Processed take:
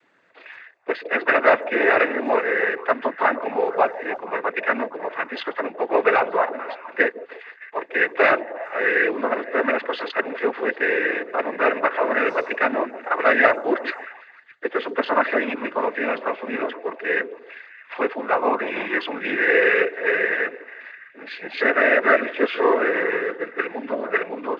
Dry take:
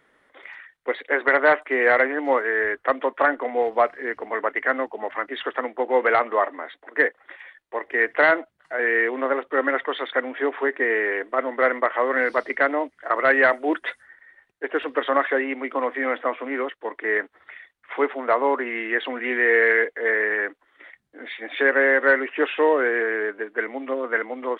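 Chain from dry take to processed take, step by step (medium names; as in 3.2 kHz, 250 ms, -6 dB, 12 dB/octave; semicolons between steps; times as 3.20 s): repeats whose band climbs or falls 154 ms, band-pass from 430 Hz, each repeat 0.7 oct, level -11 dB; noise-vocoded speech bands 16; trim +1 dB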